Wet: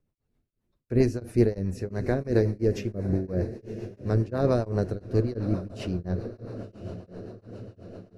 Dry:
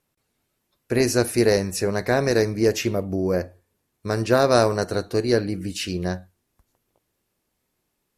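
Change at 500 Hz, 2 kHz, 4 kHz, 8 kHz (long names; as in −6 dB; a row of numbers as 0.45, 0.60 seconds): −7.0 dB, −14.0 dB, −17.0 dB, below −15 dB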